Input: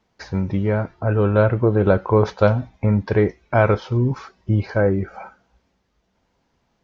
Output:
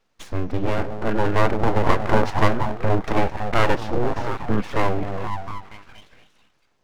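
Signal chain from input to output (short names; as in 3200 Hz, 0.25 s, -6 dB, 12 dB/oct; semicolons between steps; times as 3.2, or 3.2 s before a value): delay with a stepping band-pass 0.237 s, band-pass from 260 Hz, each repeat 0.7 oct, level -2 dB; full-wave rectifier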